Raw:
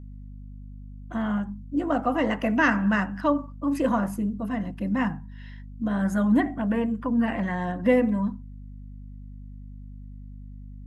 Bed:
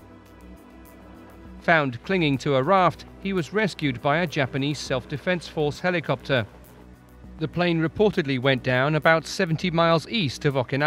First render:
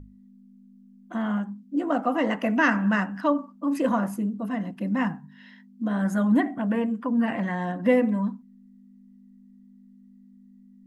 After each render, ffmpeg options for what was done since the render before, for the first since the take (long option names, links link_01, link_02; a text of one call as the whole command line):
ffmpeg -i in.wav -af "bandreject=frequency=50:width_type=h:width=6,bandreject=frequency=100:width_type=h:width=6,bandreject=frequency=150:width_type=h:width=6" out.wav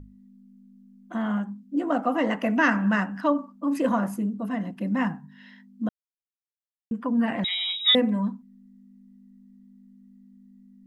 ffmpeg -i in.wav -filter_complex "[0:a]asettb=1/sr,asplit=3[link_01][link_02][link_03];[link_01]atrim=end=7.444[link_04];[link_02]atrim=start=7.44:end=7.95,asetpts=PTS-STARTPTS,afade=type=in:duration=0.004:curve=qsin,afade=type=out:start_time=0.506:duration=0.004:curve=qsin,lowpass=frequency=3400:width_type=q:width=0.5098,lowpass=frequency=3400:width_type=q:width=0.6013,lowpass=frequency=3400:width_type=q:width=0.9,lowpass=frequency=3400:width_type=q:width=2.563,afreqshift=-4000[link_05];[link_03]atrim=start=7.946[link_06];[link_04][link_05]acrossfade=duration=0.004:curve1=hsin:curve2=qsin[link_07];[link_07][link_06]acrossfade=duration=0.004:curve1=qsin:curve2=hsin,asplit=3[link_08][link_09][link_10];[link_08]atrim=end=5.89,asetpts=PTS-STARTPTS,afade=type=out:start_time=5.886:duration=0.004:curve=hsin[link_11];[link_09]atrim=start=5.89:end=6.91,asetpts=PTS-STARTPTS,volume=0[link_12];[link_10]atrim=start=6.91,asetpts=PTS-STARTPTS,afade=type=in:duration=0.004:curve=hsin[link_13];[link_11][link_12][link_13]concat=n=3:v=0:a=1" out.wav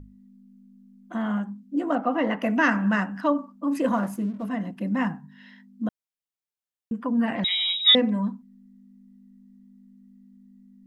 ffmpeg -i in.wav -filter_complex "[0:a]asettb=1/sr,asplit=3[link_01][link_02][link_03];[link_01]atrim=end=1.954[link_04];[link_02]atrim=start=1.95:end=2.42,asetpts=PTS-STARTPTS,afade=type=in:duration=0.004:curve=qsin,afade=type=out:start_time=0.466:duration=0.004:curve=qsin,lowpass=3900[link_05];[link_03]atrim=start=2.416[link_06];[link_04][link_05]acrossfade=duration=0.004:curve1=hsin:curve2=qsin[link_07];[link_07][link_06]acrossfade=duration=0.004:curve1=qsin:curve2=hsin,asettb=1/sr,asplit=3[link_08][link_09][link_10];[link_08]atrim=end=3.934[link_11];[link_09]atrim=start=3.93:end=4.47,asetpts=PTS-STARTPTS,afade=type=in:duration=0.004:curve=qsin,afade=type=out:start_time=0.536:duration=0.004:curve=qsin,aeval=exprs='sgn(val(0))*max(abs(val(0))-0.00299,0)':channel_layout=same[link_12];[link_10]atrim=start=4.466[link_13];[link_11][link_12]acrossfade=duration=0.004:curve1=hsin:curve2=qsin[link_14];[link_14][link_13]acrossfade=duration=0.004:curve1=qsin:curve2=hsin,asettb=1/sr,asplit=3[link_15][link_16][link_17];[link_15]atrim=end=7.354[link_18];[link_16]atrim=start=7.35:end=8.1,asetpts=PTS-STARTPTS,afade=type=in:duration=0.004:curve=qsin,afade=type=out:start_time=0.746:duration=0.004:curve=qsin,lowpass=frequency=5200:width_type=q:width=1.6[link_19];[link_17]atrim=start=8.096[link_20];[link_18][link_19]acrossfade=duration=0.004:curve1=hsin:curve2=qsin[link_21];[link_21][link_20]acrossfade=duration=0.004:curve1=qsin:curve2=hsin" out.wav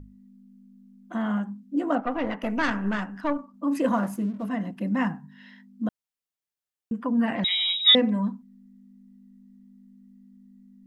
ffmpeg -i in.wav -filter_complex "[0:a]asettb=1/sr,asplit=3[link_01][link_02][link_03];[link_01]atrim=end=2.004[link_04];[link_02]atrim=start=2:end=3.54,asetpts=PTS-STARTPTS,afade=type=in:duration=0.004:curve=qsin,afade=type=out:start_time=1.536:duration=0.004:curve=qsin,aeval=exprs='(tanh(6.31*val(0)+0.75)-tanh(0.75))/6.31':channel_layout=same[link_05];[link_03]atrim=start=3.536[link_06];[link_04][link_05]acrossfade=duration=0.004:curve1=hsin:curve2=qsin[link_07];[link_07][link_06]acrossfade=duration=0.004:curve1=qsin:curve2=hsin" out.wav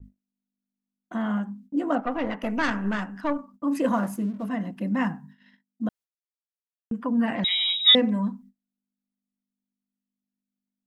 ffmpeg -i in.wav -af "agate=range=-37dB:threshold=-47dB:ratio=16:detection=peak,adynamicequalizer=threshold=0.0112:dfrequency=5100:dqfactor=0.7:tfrequency=5100:tqfactor=0.7:attack=5:release=100:ratio=0.375:range=1.5:mode=boostabove:tftype=highshelf" out.wav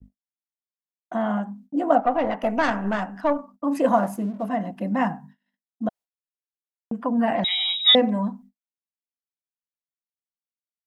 ffmpeg -i in.wav -af "agate=range=-33dB:threshold=-43dB:ratio=3:detection=peak,equalizer=frequency=710:width_type=o:width=0.8:gain=11.5" out.wav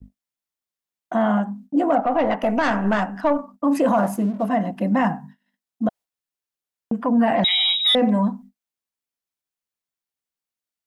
ffmpeg -i in.wav -af "acontrast=35,alimiter=limit=-11dB:level=0:latency=1:release=21" out.wav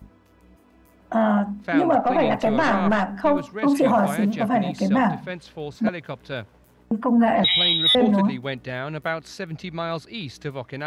ffmpeg -i in.wav -i bed.wav -filter_complex "[1:a]volume=-8.5dB[link_01];[0:a][link_01]amix=inputs=2:normalize=0" out.wav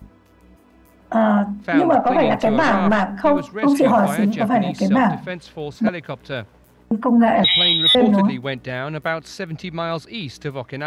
ffmpeg -i in.wav -af "volume=3.5dB" out.wav